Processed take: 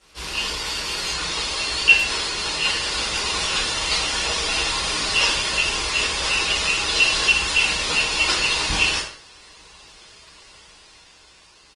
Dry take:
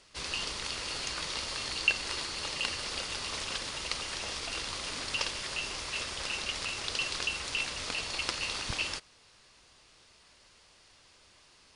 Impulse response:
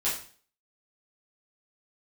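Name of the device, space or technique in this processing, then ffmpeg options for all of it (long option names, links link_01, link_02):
speakerphone in a meeting room: -filter_complex "[1:a]atrim=start_sample=2205[link_01];[0:a][link_01]afir=irnorm=-1:irlink=0,asplit=2[link_02][link_03];[link_03]adelay=100,highpass=300,lowpass=3400,asoftclip=type=hard:threshold=-12dB,volume=-12dB[link_04];[link_02][link_04]amix=inputs=2:normalize=0,dynaudnorm=framelen=220:gausssize=11:maxgain=4.5dB,volume=1dB" -ar 48000 -c:a libopus -b:a 20k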